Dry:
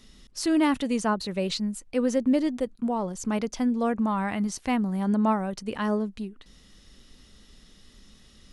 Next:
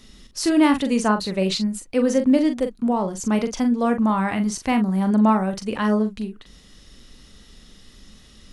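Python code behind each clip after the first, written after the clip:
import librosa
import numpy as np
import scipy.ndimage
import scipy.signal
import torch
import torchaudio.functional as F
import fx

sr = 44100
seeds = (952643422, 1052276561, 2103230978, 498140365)

y = fx.doubler(x, sr, ms=42.0, db=-8.0)
y = y * 10.0 ** (5.0 / 20.0)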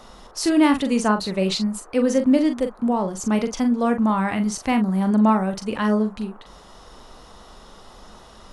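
y = fx.dmg_noise_band(x, sr, seeds[0], low_hz=340.0, high_hz=1300.0, level_db=-49.0)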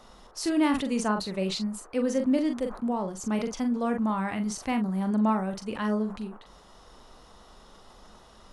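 y = fx.sustainer(x, sr, db_per_s=120.0)
y = y * 10.0 ** (-7.5 / 20.0)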